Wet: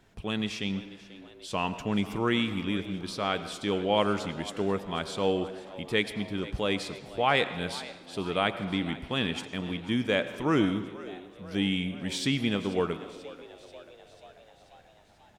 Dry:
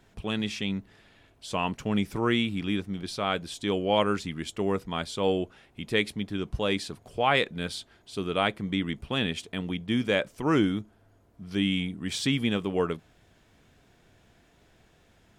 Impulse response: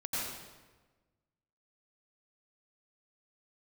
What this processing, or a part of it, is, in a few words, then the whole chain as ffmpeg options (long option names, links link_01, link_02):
filtered reverb send: -filter_complex "[0:a]asplit=2[link_01][link_02];[link_02]highpass=frequency=240:poles=1,lowpass=7100[link_03];[1:a]atrim=start_sample=2205[link_04];[link_03][link_04]afir=irnorm=-1:irlink=0,volume=-15dB[link_05];[link_01][link_05]amix=inputs=2:normalize=0,asplit=7[link_06][link_07][link_08][link_09][link_10][link_11][link_12];[link_07]adelay=488,afreqshift=84,volume=-18dB[link_13];[link_08]adelay=976,afreqshift=168,volume=-22dB[link_14];[link_09]adelay=1464,afreqshift=252,volume=-26dB[link_15];[link_10]adelay=1952,afreqshift=336,volume=-30dB[link_16];[link_11]adelay=2440,afreqshift=420,volume=-34.1dB[link_17];[link_12]adelay=2928,afreqshift=504,volume=-38.1dB[link_18];[link_06][link_13][link_14][link_15][link_16][link_17][link_18]amix=inputs=7:normalize=0,volume=-2dB"